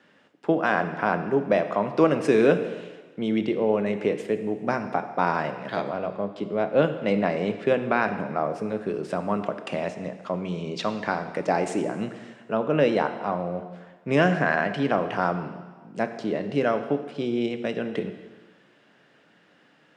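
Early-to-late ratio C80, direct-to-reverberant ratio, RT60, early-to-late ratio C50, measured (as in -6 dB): 11.0 dB, 8.0 dB, 1.4 s, 10.0 dB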